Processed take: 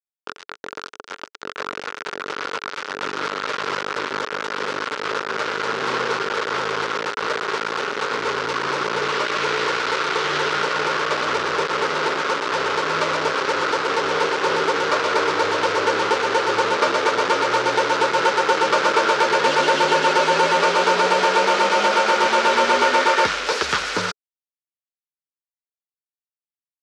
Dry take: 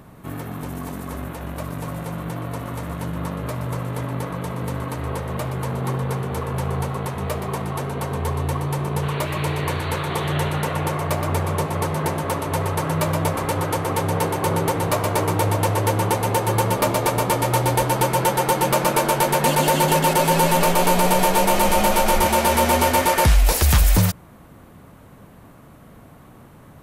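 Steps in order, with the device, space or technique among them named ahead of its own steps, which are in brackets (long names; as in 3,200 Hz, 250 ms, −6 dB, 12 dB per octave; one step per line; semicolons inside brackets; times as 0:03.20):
0:02.29–0:03.81: parametric band 2,700 Hz +4 dB 1.6 octaves
hand-held game console (bit reduction 4 bits; loudspeaker in its box 410–5,500 Hz, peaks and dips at 430 Hz +7 dB, 710 Hz −8 dB, 1,400 Hz +9 dB)
level +1.5 dB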